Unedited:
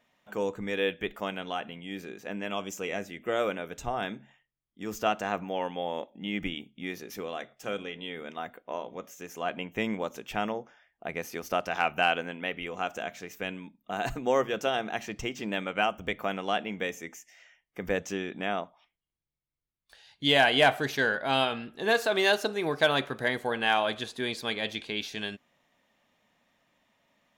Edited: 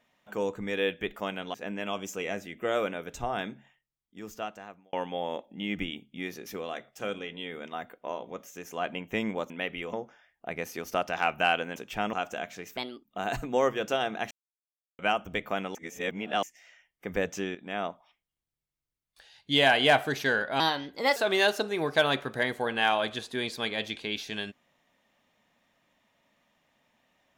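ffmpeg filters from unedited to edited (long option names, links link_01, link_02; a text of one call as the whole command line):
ffmpeg -i in.wav -filter_complex "[0:a]asplit=16[link_01][link_02][link_03][link_04][link_05][link_06][link_07][link_08][link_09][link_10][link_11][link_12][link_13][link_14][link_15][link_16];[link_01]atrim=end=1.542[link_17];[link_02]atrim=start=2.178:end=5.57,asetpts=PTS-STARTPTS,afade=type=out:start_time=1.972:duration=1.42[link_18];[link_03]atrim=start=5.57:end=10.142,asetpts=PTS-STARTPTS,afade=type=in:duration=0.004:curve=hsin[link_19];[link_04]atrim=start=12.338:end=12.772[link_20];[link_05]atrim=start=10.508:end=12.342[link_21];[link_06]atrim=start=10.138:end=10.512[link_22];[link_07]atrim=start=12.768:end=13.414[link_23];[link_08]atrim=start=13.41:end=13.77,asetpts=PTS-STARTPTS,asetrate=59094,aresample=44100[link_24];[link_09]atrim=start=13.766:end=15.04,asetpts=PTS-STARTPTS,afade=type=out:start_time=1.27:duration=0.004:curve=hsin[link_25];[link_10]atrim=start=15.04:end=15.72,asetpts=PTS-STARTPTS,volume=0[link_26];[link_11]atrim=start=15.72:end=16.482,asetpts=PTS-STARTPTS,afade=type=in:duration=0.004:curve=hsin[link_27];[link_12]atrim=start=16.478:end=17.162,asetpts=PTS-STARTPTS,areverse[link_28];[link_13]atrim=start=17.158:end=18.28,asetpts=PTS-STARTPTS,afade=type=out:start_time=1.118:duration=0.004:curve=hsin:silence=0.251189[link_29];[link_14]atrim=start=18.28:end=21.334,asetpts=PTS-STARTPTS,afade=type=in:duration=0.32:silence=0.251189[link_30];[link_15]atrim=start=21.33:end=22.01,asetpts=PTS-STARTPTS,asetrate=53361,aresample=44100,atrim=end_sample=24783,asetpts=PTS-STARTPTS[link_31];[link_16]atrim=start=22.006[link_32];[link_18][link_19]concat=n=2:v=0:a=1[link_33];[link_17][link_33]acrossfade=duration=0.004:curve1=hsin:curve2=hsin[link_34];[link_34][link_20]acrossfade=duration=0.004:curve1=hsin:curve2=hsin[link_35];[link_35][link_21]acrossfade=duration=0.004:curve1=hsin:curve2=hsin[link_36];[link_36][link_22]acrossfade=duration=0.004:curve1=hsin:curve2=hsin[link_37];[link_37][link_23]acrossfade=duration=0.004:curve1=hsin:curve2=hsin[link_38];[link_38][link_24]acrossfade=duration=0.004:curve1=hsin:curve2=hsin[link_39];[link_25][link_26][link_27]concat=n=3:v=0:a=1[link_40];[link_39][link_40]acrossfade=duration=0.004:curve1=hsin:curve2=hsin[link_41];[link_41][link_28]acrossfade=duration=0.004:curve1=hsin:curve2=hsin[link_42];[link_29][link_30]concat=n=2:v=0:a=1[link_43];[link_42][link_43]acrossfade=duration=0.004:curve1=hsin:curve2=hsin[link_44];[link_44][link_31]acrossfade=duration=0.004:curve1=hsin:curve2=hsin[link_45];[link_45][link_32]acrossfade=duration=0.004:curve1=hsin:curve2=hsin" out.wav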